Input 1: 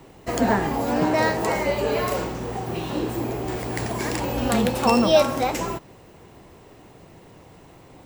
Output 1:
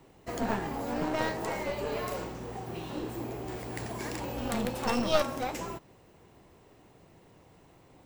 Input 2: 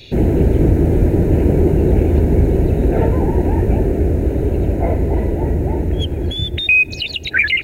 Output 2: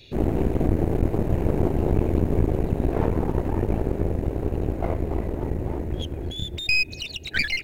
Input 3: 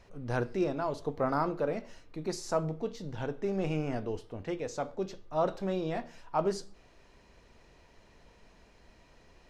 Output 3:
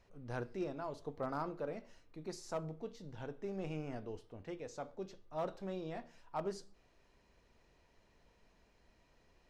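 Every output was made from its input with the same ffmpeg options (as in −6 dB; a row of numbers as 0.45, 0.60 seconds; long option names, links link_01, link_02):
-af "aeval=exprs='clip(val(0),-1,0.0794)':channel_layout=same,aeval=exprs='0.891*(cos(1*acos(clip(val(0)/0.891,-1,1)))-cos(1*PI/2))+0.0562*(cos(7*acos(clip(val(0)/0.891,-1,1)))-cos(7*PI/2))':channel_layout=same,volume=-5dB"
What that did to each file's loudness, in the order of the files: −10.5, −9.5, −10.0 LU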